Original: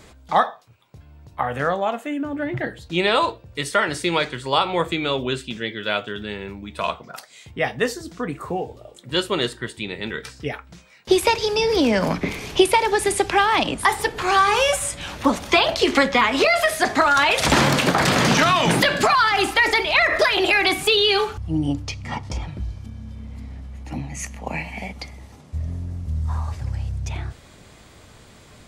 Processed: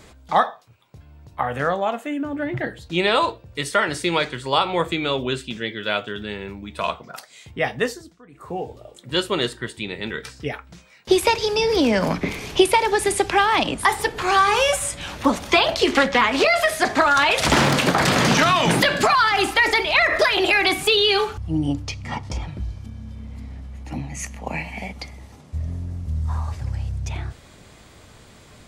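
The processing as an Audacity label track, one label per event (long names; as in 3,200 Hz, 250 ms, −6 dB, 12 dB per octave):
7.800000	8.670000	duck −21 dB, fades 0.37 s
15.930000	17.740000	highs frequency-modulated by the lows depth 0.33 ms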